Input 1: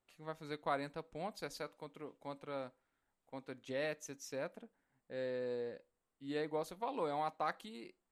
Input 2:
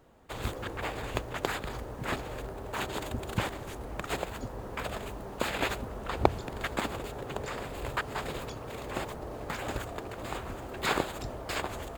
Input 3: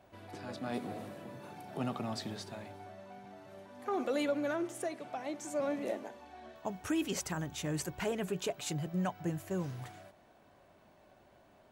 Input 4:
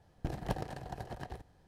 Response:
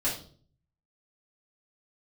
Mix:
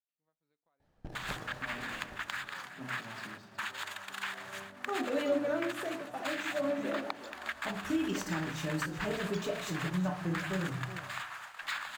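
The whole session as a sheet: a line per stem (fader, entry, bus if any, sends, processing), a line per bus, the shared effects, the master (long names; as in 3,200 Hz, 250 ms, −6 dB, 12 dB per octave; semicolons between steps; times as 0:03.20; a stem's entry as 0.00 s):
−14.5 dB, 0.00 s, bus A, no send, no echo send, downward compressor 4 to 1, threshold −42 dBFS, peak gain reduction 10 dB
+2.0 dB, 0.85 s, bus A, no send, echo send −18.5 dB, high-pass filter 1,100 Hz 24 dB per octave; parametric band 1,700 Hz +5 dB 0.34 octaves; speech leveller within 4 dB 2 s
0:04.05 −15.5 dB → 0:04.35 −5 dB, 1.00 s, bus A, send −7 dB, echo send −9.5 dB, low-shelf EQ 280 Hz +3.5 dB; noise gate with hold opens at −51 dBFS
−9.5 dB, 0.80 s, no bus, send −14 dB, no echo send, no processing
bus A: 0.0 dB, noise gate −46 dBFS, range −21 dB; downward compressor 6 to 1, threshold −34 dBFS, peak gain reduction 11.5 dB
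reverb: on, RT60 0.45 s, pre-delay 3 ms
echo: single-tap delay 371 ms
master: high-shelf EQ 8,900 Hz −5 dB; linearly interpolated sample-rate reduction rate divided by 2×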